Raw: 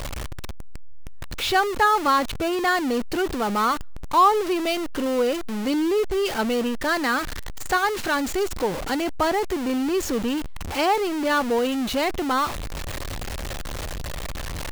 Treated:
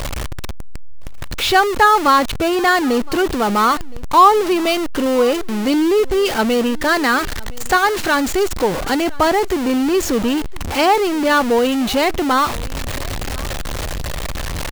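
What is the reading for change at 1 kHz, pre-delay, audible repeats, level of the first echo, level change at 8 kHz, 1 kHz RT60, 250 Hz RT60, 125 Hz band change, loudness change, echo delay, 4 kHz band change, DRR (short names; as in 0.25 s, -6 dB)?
+7.0 dB, none, 1, -22.5 dB, +7.0 dB, none, none, +7.0 dB, +7.0 dB, 1.016 s, +7.0 dB, none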